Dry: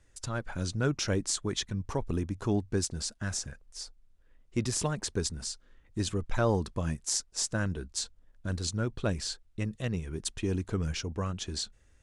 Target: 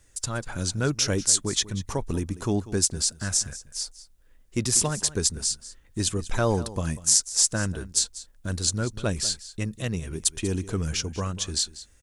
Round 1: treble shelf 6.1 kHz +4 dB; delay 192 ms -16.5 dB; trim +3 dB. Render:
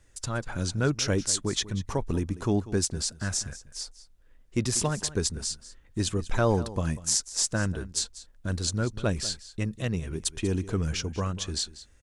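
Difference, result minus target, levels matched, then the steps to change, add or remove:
8 kHz band -3.0 dB
change: treble shelf 6.1 kHz +15 dB

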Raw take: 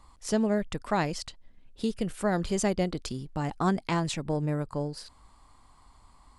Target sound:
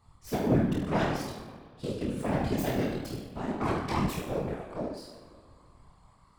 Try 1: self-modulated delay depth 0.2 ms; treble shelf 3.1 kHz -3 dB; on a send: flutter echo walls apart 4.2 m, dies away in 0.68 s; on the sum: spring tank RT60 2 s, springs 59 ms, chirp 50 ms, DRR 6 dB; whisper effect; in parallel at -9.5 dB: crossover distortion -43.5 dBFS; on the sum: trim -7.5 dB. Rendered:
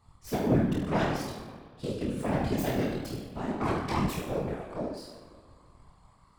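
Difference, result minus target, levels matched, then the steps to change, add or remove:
crossover distortion: distortion -8 dB
change: crossover distortion -35 dBFS

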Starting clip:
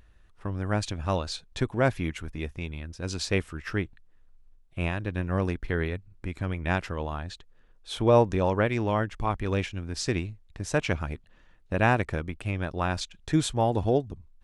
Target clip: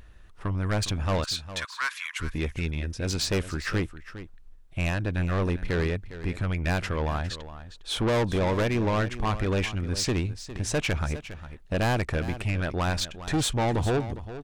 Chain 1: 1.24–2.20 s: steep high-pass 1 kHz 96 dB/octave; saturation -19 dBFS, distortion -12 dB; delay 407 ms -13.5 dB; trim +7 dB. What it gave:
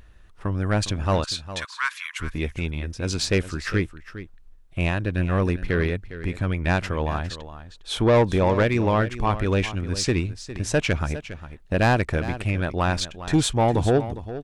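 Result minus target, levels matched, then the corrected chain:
saturation: distortion -7 dB
1.24–2.20 s: steep high-pass 1 kHz 96 dB/octave; saturation -28.5 dBFS, distortion -5 dB; delay 407 ms -13.5 dB; trim +7 dB

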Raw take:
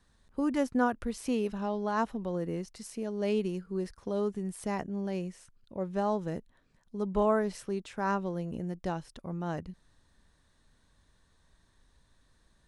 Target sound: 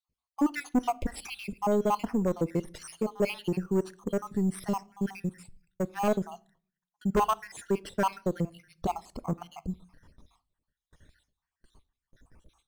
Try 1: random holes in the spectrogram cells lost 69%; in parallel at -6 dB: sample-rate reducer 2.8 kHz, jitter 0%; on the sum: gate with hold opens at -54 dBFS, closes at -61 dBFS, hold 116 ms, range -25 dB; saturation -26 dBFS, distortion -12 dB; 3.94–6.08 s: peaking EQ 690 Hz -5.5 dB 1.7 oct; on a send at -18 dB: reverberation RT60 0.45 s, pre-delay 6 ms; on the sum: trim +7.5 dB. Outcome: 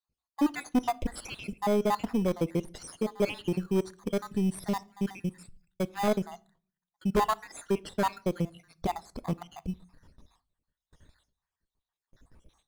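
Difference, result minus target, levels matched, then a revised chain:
sample-rate reducer: distortion +7 dB
random holes in the spectrogram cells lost 69%; in parallel at -6 dB: sample-rate reducer 7.3 kHz, jitter 0%; on the sum: gate with hold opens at -54 dBFS, closes at -61 dBFS, hold 116 ms, range -25 dB; saturation -26 dBFS, distortion -12 dB; 3.94–6.08 s: peaking EQ 690 Hz -5.5 dB 1.7 oct; on a send at -18 dB: reverberation RT60 0.45 s, pre-delay 6 ms; on the sum: trim +7.5 dB

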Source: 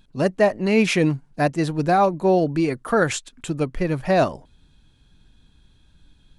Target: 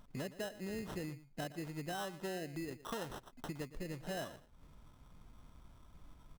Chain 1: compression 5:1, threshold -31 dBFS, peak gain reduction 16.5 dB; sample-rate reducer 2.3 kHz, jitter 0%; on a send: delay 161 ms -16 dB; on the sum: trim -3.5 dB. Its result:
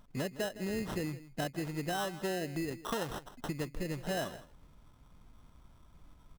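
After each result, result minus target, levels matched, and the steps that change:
echo 44 ms late; compression: peak gain reduction -6.5 dB
change: delay 117 ms -16 dB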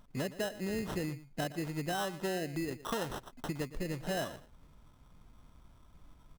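compression: peak gain reduction -6.5 dB
change: compression 5:1, threshold -39 dBFS, peak gain reduction 23 dB

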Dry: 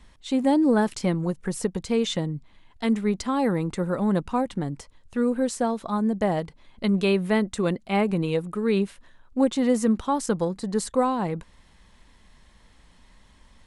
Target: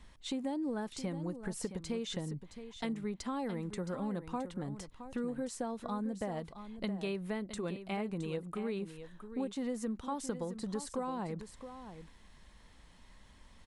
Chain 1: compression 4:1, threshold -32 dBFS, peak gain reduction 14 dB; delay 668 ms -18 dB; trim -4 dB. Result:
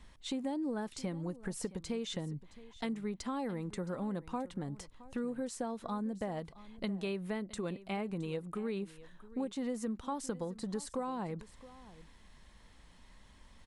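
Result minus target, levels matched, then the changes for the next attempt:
echo-to-direct -7 dB
change: delay 668 ms -11 dB

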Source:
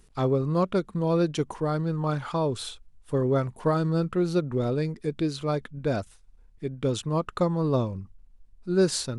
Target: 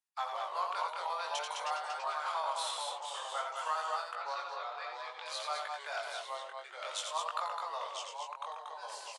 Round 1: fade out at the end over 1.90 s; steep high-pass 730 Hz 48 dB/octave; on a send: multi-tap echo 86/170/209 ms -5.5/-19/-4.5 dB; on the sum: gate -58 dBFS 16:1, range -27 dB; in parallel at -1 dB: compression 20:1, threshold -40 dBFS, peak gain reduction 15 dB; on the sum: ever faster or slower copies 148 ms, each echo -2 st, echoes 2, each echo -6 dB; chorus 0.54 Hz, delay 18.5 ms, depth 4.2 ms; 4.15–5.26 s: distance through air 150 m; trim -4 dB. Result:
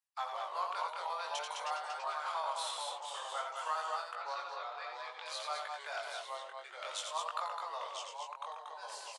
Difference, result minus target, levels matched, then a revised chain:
compression: peak gain reduction +7 dB
fade out at the end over 1.90 s; steep high-pass 730 Hz 48 dB/octave; on a send: multi-tap echo 86/170/209 ms -5.5/-19/-4.5 dB; on the sum: gate -58 dBFS 16:1, range -27 dB; in parallel at -1 dB: compression 20:1, threshold -32.5 dBFS, peak gain reduction 8 dB; on the sum: ever faster or slower copies 148 ms, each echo -2 st, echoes 2, each echo -6 dB; chorus 0.54 Hz, delay 18.5 ms, depth 4.2 ms; 4.15–5.26 s: distance through air 150 m; trim -4 dB

